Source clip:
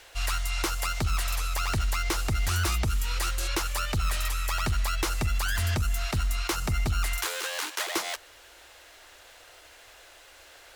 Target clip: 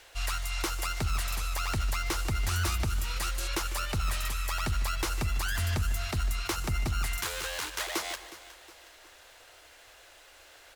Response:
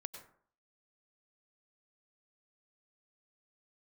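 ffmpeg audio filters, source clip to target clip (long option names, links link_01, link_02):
-filter_complex "[0:a]aecho=1:1:364|728|1092|1456:0.158|0.0713|0.0321|0.0144,asplit=2[link_01][link_02];[1:a]atrim=start_sample=2205,adelay=149[link_03];[link_02][link_03]afir=irnorm=-1:irlink=0,volume=-11.5dB[link_04];[link_01][link_04]amix=inputs=2:normalize=0,volume=-3dB"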